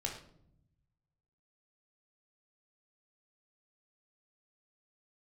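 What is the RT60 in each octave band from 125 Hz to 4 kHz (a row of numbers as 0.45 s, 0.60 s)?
1.7 s, 1.3 s, 0.80 s, 0.60 s, 0.45 s, 0.45 s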